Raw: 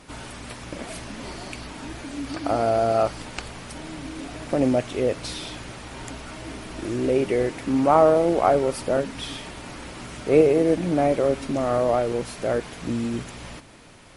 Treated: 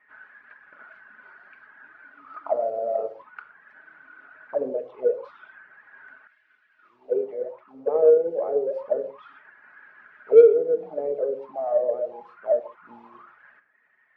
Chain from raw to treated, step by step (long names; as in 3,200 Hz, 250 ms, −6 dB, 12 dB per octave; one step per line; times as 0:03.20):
low-pass that shuts in the quiet parts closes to 1,400 Hz, open at −14.5 dBFS
reverb reduction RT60 0.74 s
envelope filter 460–1,900 Hz, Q 14, down, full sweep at −18 dBFS
in parallel at −8.5 dB: soft clipping −21.5 dBFS, distortion −9 dB
on the sum: convolution reverb, pre-delay 5 ms, DRR 6.5 dB
0:06.27–0:08.28: multiband upward and downward expander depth 70%
level +5 dB